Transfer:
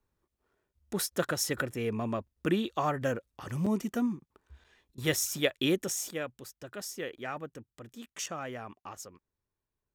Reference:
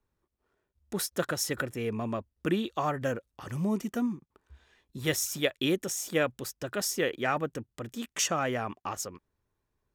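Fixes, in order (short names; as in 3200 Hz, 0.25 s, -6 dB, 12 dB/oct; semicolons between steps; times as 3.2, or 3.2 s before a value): interpolate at 2.27/3.66/4.64/7.18/8.26, 5.4 ms; interpolate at 4.95, 27 ms; gain 0 dB, from 6.11 s +9 dB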